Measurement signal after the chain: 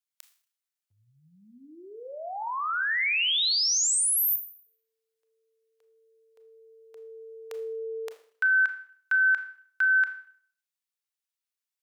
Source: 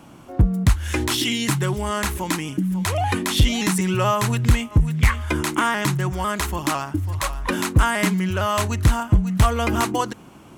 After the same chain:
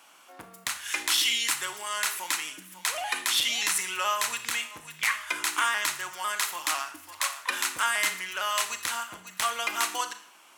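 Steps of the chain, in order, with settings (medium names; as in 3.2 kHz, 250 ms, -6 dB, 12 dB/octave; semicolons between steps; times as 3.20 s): Bessel high-pass 1.6 kHz, order 2; Schroeder reverb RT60 0.53 s, combs from 26 ms, DRR 8.5 dB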